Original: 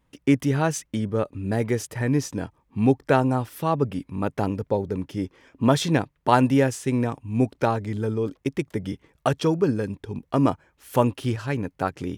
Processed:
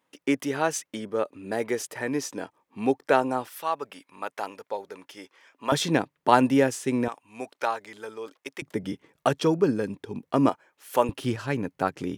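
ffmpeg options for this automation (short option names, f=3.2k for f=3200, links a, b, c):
-af "asetnsamples=n=441:p=0,asendcmd='3.48 highpass f 810;5.72 highpass f 210;7.08 highpass f 770;8.62 highpass f 180;10.49 highpass f 420;11.09 highpass f 150',highpass=360"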